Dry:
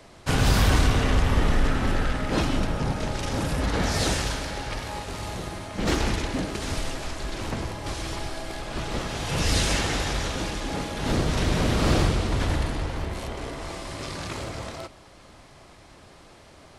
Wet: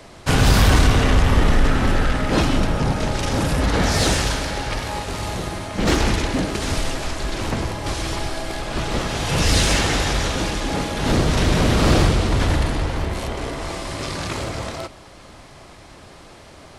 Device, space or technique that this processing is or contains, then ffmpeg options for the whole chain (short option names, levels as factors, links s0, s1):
parallel distortion: -filter_complex "[0:a]asplit=2[s0][s1];[s1]asoftclip=type=hard:threshold=0.0708,volume=0.282[s2];[s0][s2]amix=inputs=2:normalize=0,volume=1.68"